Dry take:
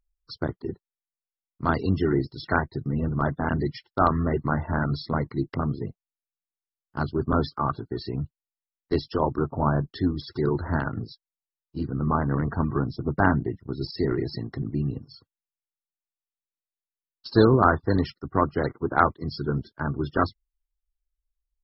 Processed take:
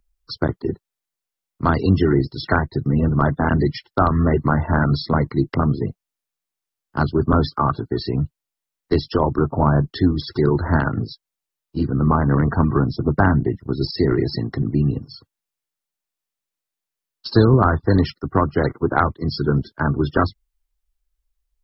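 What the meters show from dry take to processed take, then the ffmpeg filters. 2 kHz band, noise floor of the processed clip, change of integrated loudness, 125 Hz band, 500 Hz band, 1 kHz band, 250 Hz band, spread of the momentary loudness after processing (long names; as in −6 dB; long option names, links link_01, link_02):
+4.5 dB, below −85 dBFS, +6.0 dB, +8.0 dB, +5.5 dB, +4.0 dB, +6.5 dB, 8 LU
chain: -filter_complex "[0:a]acrossover=split=180[link_01][link_02];[link_02]acompressor=threshold=-23dB:ratio=4[link_03];[link_01][link_03]amix=inputs=2:normalize=0,volume=8.5dB"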